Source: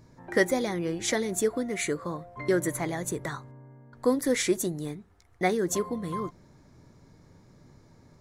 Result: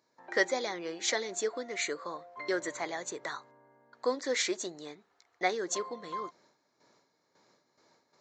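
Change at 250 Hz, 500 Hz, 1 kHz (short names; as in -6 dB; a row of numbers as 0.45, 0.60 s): -12.0, -6.0, -2.0 dB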